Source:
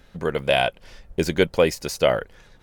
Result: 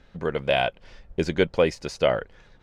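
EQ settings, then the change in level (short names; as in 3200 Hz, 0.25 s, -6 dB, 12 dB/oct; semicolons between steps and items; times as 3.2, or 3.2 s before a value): air absorption 90 m; -2.0 dB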